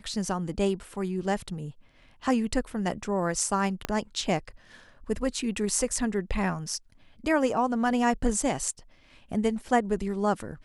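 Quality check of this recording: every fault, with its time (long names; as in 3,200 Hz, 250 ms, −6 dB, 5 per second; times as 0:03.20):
0:03.85: click −13 dBFS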